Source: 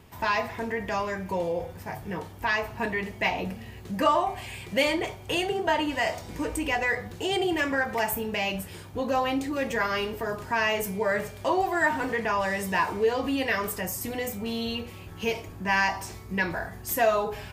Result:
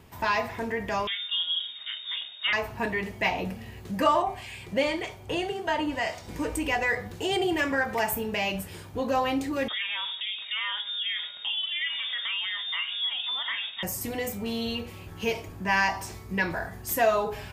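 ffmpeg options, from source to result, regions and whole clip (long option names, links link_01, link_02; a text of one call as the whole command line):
ffmpeg -i in.wav -filter_complex "[0:a]asettb=1/sr,asplit=3[link_01][link_02][link_03];[link_01]atrim=end=1.074[link_04];[link_02]atrim=start=1.07:end=2.53,asetpts=PTS-STARTPTS,afade=type=in:duration=0.004:curve=qsin,afade=type=out:start_time=1.456:duration=0.004:curve=qsin,bandreject=frequency=170.2:width_type=h:width=4,bandreject=frequency=340.4:width_type=h:width=4,bandreject=frequency=510.6:width_type=h:width=4,bandreject=frequency=680.8:width_type=h:width=4,bandreject=frequency=851:width_type=h:width=4,bandreject=frequency=1021.2:width_type=h:width=4,bandreject=frequency=1191.4:width_type=h:width=4,bandreject=frequency=1361.6:width_type=h:width=4,bandreject=frequency=1531.8:width_type=h:width=4,bandreject=frequency=1702:width_type=h:width=4,bandreject=frequency=1872.2:width_type=h:width=4,bandreject=frequency=2042.4:width_type=h:width=4,bandreject=frequency=2212.6:width_type=h:width=4,bandreject=frequency=2382.8:width_type=h:width=4,bandreject=frequency=2553:width_type=h:width=4,bandreject=frequency=2723.2:width_type=h:width=4,bandreject=frequency=2893.4:width_type=h:width=4,bandreject=frequency=3063.6:width_type=h:width=4,bandreject=frequency=3233.8:width_type=h:width=4,bandreject=frequency=3404:width_type=h:width=4,bandreject=frequency=3574.2:width_type=h:width=4,bandreject=frequency=3744.4:width_type=h:width=4,bandreject=frequency=3914.6:width_type=h:width=4,bandreject=frequency=4084.8:width_type=h:width=4,bandreject=frequency=4255:width_type=h:width=4,bandreject=frequency=4425.2:width_type=h:width=4,bandreject=frequency=4595.4:width_type=h:width=4,bandreject=frequency=4765.6:width_type=h:width=4,bandreject=frequency=4935.8:width_type=h:width=4,bandreject=frequency=5106:width_type=h:width=4,lowpass=frequency=3200:width_type=q:width=0.5098,lowpass=frequency=3200:width_type=q:width=0.6013,lowpass=frequency=3200:width_type=q:width=0.9,lowpass=frequency=3200:width_type=q:width=2.563,afreqshift=-3800[link_05];[link_03]atrim=start=2.526[link_06];[link_04][link_05]acrossfade=duration=0.004:curve1=hsin:curve2=qsin[link_07];[link_07][link_06]acrossfade=duration=0.004:curve1=qsin:curve2=hsin,asettb=1/sr,asplit=3[link_08][link_09][link_10];[link_08]atrim=end=4.224[link_11];[link_09]atrim=start=4.22:end=6.28,asetpts=PTS-STARTPTS,afade=type=in:duration=0.004:curve=qsin,afade=type=out:start_time=2.056:duration=0.004:curve=qsin,acrossover=split=1300[link_12][link_13];[link_12]aeval=exprs='val(0)*(1-0.5/2+0.5/2*cos(2*PI*1.8*n/s))':channel_layout=same[link_14];[link_13]aeval=exprs='val(0)*(1-0.5/2-0.5/2*cos(2*PI*1.8*n/s))':channel_layout=same[link_15];[link_14][link_15]amix=inputs=2:normalize=0,acrossover=split=7700[link_16][link_17];[link_17]acompressor=threshold=-58dB:ratio=4:attack=1:release=60[link_18];[link_16][link_18]amix=inputs=2:normalize=0[link_19];[link_10]atrim=start=6.276[link_20];[link_11][link_19]acrossfade=duration=0.004:curve1=hsin:curve2=qsin[link_21];[link_21][link_20]acrossfade=duration=0.004:curve1=qsin:curve2=hsin,asettb=1/sr,asplit=3[link_22][link_23][link_24];[link_22]atrim=end=9.684[link_25];[link_23]atrim=start=9.68:end=13.83,asetpts=PTS-STARTPTS,afade=type=in:duration=0.004:curve=qsin,afade=type=out:start_time=4.146:duration=0.004:curve=qsin,acompressor=threshold=-29dB:ratio=2.5:attack=3.2:release=140:knee=1:detection=peak,lowpass=frequency=3200:width_type=q:width=0.5098,lowpass=frequency=3200:width_type=q:width=0.6013,lowpass=frequency=3200:width_type=q:width=0.9,lowpass=frequency=3200:width_type=q:width=2.563,afreqshift=-3800[link_26];[link_24]atrim=start=13.826[link_27];[link_25][link_26]acrossfade=duration=0.004:curve1=hsin:curve2=qsin[link_28];[link_28][link_27]acrossfade=duration=0.004:curve1=qsin:curve2=hsin" out.wav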